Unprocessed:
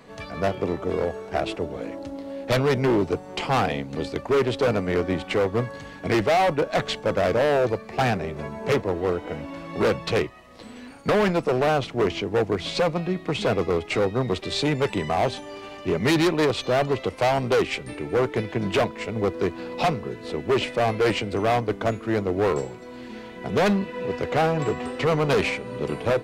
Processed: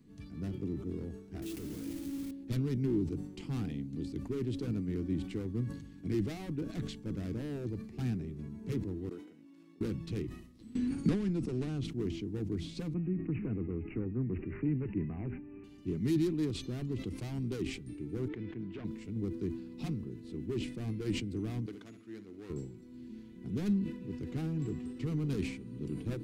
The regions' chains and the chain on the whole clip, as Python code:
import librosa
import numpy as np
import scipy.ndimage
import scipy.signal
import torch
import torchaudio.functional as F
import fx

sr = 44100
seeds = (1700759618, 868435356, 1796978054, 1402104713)

y = fx.chain(x, sr, fx.highpass(hz=280.0, slope=6),
    fx.quant_companded(bits=2), at=(1.42, 2.31))
y = fx.chain(y, sr, fx.highpass(hz=250.0, slope=12),
    fx.level_steps(step_db=21),
    fx.low_shelf(hz=330.0, db=-8.5), at=(9.09, 9.81))
y = fx.chain(y, sr, fx.lowpass(hz=10000.0, slope=24),
    fx.band_squash(depth_pct=100), at=(10.75, 11.84))
y = fx.chain(y, sr, fx.lowpass(hz=2800.0, slope=6),
    fx.resample_bad(factor=8, down='none', up='filtered'),
    fx.band_squash(depth_pct=40), at=(12.94, 15.64))
y = fx.chain(y, sr, fx.lowpass(hz=2200.0, slope=12),
    fx.low_shelf(hz=370.0, db=-12.0),
    fx.sustainer(db_per_s=40.0), at=(18.28, 18.85))
y = fx.chain(y, sr, fx.highpass(hz=1200.0, slope=6),
    fx.high_shelf(hz=9800.0, db=-8.5),
    fx.room_flutter(wall_m=11.7, rt60_s=0.33), at=(21.66, 22.5))
y = fx.curve_eq(y, sr, hz=(320.0, 580.0, 11000.0), db=(0, -27, -7))
y = fx.sustainer(y, sr, db_per_s=79.0)
y = y * 10.0 ** (-7.0 / 20.0)